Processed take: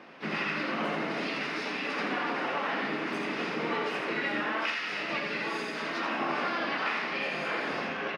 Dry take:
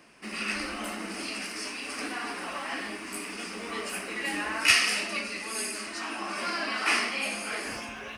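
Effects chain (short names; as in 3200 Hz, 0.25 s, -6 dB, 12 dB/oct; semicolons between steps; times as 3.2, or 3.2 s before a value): HPF 220 Hz 12 dB/oct; bell 480 Hz +2 dB 0.65 oct; compressor 10:1, threshold -34 dBFS, peak gain reduction 18.5 dB; harmoniser -5 st -5 dB, +4 st -13 dB, +12 st -11 dB; air absorption 270 m; on a send: echo 83 ms -6 dB; on the sum: gain +6.5 dB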